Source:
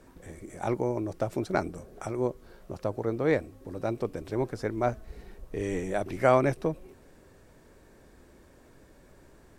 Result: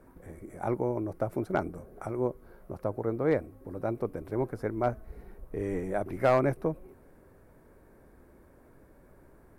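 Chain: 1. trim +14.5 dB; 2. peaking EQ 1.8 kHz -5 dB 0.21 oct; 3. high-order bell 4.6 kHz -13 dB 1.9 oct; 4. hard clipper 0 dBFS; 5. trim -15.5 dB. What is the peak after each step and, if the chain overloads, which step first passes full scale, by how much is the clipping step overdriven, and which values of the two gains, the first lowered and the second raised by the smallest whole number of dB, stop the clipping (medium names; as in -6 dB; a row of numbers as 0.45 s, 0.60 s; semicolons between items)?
+6.0 dBFS, +6.0 dBFS, +6.0 dBFS, 0.0 dBFS, -15.5 dBFS; step 1, 6.0 dB; step 1 +8.5 dB, step 5 -9.5 dB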